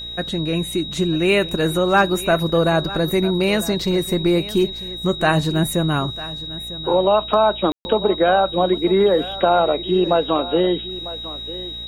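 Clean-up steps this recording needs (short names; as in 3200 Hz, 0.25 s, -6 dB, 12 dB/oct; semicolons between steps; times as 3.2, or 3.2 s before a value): de-hum 58.2 Hz, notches 14; notch 3800 Hz, Q 30; room tone fill 7.72–7.85; inverse comb 0.949 s -16.5 dB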